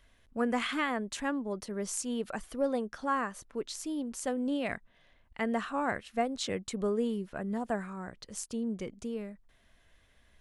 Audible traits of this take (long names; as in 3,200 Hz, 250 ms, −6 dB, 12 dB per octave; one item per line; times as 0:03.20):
background noise floor −66 dBFS
spectral slope −4.0 dB per octave